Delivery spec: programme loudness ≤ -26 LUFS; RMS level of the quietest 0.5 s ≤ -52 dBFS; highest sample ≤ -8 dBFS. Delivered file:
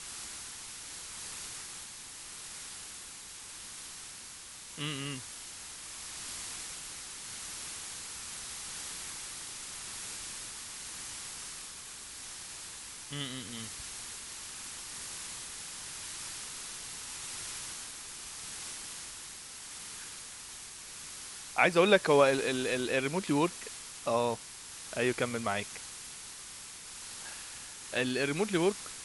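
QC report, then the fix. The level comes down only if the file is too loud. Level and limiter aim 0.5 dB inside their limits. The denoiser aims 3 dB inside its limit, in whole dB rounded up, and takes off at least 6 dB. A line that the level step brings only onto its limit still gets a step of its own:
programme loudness -35.5 LUFS: pass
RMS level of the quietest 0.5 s -48 dBFS: fail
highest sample -10.0 dBFS: pass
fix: noise reduction 7 dB, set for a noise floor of -48 dBFS

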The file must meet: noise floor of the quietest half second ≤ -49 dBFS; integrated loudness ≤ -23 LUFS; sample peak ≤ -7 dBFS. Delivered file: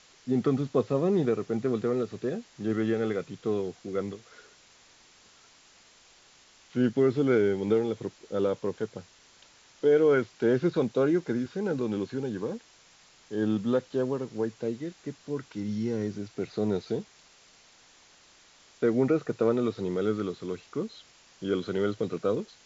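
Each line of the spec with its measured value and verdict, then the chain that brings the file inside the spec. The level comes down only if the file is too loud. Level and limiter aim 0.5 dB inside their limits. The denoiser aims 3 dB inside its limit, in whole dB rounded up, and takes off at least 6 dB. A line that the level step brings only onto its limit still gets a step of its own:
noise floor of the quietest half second -58 dBFS: pass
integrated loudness -29.0 LUFS: pass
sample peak -12.5 dBFS: pass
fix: none needed

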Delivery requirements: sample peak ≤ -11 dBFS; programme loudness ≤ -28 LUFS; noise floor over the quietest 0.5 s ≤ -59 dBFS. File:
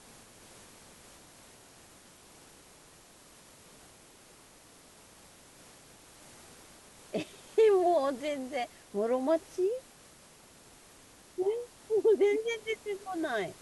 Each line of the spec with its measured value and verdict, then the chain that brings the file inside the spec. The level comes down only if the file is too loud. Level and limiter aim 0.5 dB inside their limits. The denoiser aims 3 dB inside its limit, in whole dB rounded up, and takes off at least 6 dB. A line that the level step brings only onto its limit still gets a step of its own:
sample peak -16.0 dBFS: pass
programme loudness -30.5 LUFS: pass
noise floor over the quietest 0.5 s -57 dBFS: fail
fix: noise reduction 6 dB, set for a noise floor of -57 dBFS

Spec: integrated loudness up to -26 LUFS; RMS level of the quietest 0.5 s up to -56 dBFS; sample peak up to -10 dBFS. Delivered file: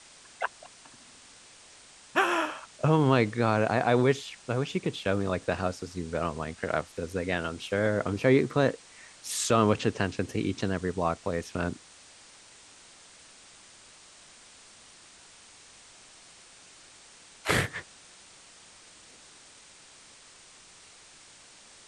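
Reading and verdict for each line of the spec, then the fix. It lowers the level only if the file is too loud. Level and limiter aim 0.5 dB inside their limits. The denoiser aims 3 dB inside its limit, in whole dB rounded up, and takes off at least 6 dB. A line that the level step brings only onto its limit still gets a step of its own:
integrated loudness -28.5 LUFS: pass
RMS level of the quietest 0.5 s -53 dBFS: fail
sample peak -8.0 dBFS: fail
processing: noise reduction 6 dB, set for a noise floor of -53 dBFS; peak limiter -10.5 dBFS

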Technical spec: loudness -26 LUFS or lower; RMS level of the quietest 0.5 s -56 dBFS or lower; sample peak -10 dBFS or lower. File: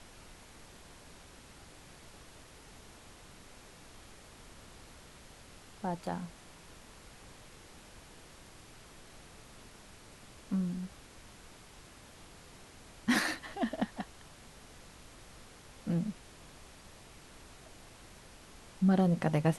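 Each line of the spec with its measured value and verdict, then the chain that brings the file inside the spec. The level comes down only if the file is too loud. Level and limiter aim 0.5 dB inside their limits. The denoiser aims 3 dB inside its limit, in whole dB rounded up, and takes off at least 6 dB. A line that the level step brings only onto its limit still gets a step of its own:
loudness -34.0 LUFS: pass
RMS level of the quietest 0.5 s -54 dBFS: fail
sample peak -15.5 dBFS: pass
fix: noise reduction 6 dB, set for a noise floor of -54 dBFS

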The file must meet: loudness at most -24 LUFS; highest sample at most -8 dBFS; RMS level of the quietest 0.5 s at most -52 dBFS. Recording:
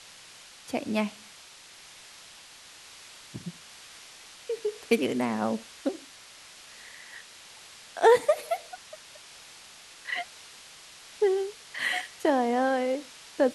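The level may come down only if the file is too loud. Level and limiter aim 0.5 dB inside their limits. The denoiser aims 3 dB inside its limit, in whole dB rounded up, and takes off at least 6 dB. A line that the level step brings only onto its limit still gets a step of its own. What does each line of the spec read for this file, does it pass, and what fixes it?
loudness -28.0 LUFS: pass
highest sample -8.5 dBFS: pass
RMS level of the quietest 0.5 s -50 dBFS: fail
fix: noise reduction 6 dB, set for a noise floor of -50 dBFS

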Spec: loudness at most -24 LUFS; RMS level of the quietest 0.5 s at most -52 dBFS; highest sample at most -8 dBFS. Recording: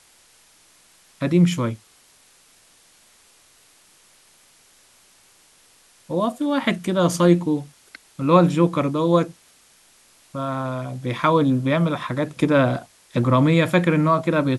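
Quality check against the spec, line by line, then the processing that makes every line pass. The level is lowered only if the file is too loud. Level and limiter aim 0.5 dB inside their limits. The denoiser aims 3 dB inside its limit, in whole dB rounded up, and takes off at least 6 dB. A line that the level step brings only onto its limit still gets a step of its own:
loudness -20.5 LUFS: fail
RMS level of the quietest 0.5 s -55 dBFS: pass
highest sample -3.5 dBFS: fail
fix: trim -4 dB; peak limiter -8.5 dBFS

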